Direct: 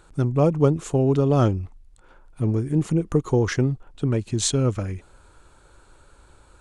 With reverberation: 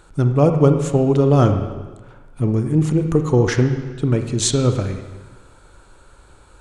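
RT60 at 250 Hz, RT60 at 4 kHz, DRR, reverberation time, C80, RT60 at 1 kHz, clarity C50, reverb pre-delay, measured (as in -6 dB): 1.3 s, 1.2 s, 6.5 dB, 1.3 s, 9.0 dB, 1.3 s, 7.5 dB, 27 ms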